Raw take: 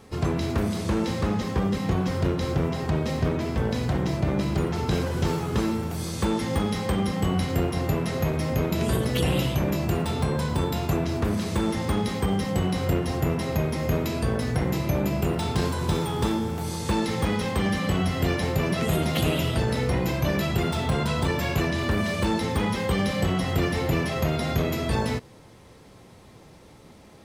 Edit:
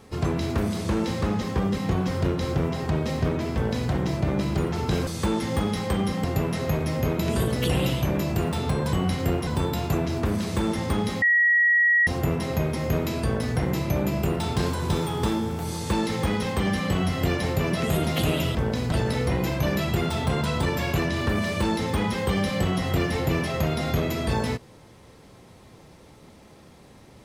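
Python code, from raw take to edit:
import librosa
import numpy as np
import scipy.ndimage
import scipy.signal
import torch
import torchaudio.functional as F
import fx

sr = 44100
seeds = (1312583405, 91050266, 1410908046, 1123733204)

y = fx.edit(x, sr, fx.duplicate(start_s=3.54, length_s=0.37, to_s=19.54),
    fx.cut(start_s=5.07, length_s=0.99),
    fx.move(start_s=7.23, length_s=0.54, to_s=10.46),
    fx.bleep(start_s=12.21, length_s=0.85, hz=1910.0, db=-16.0), tone=tone)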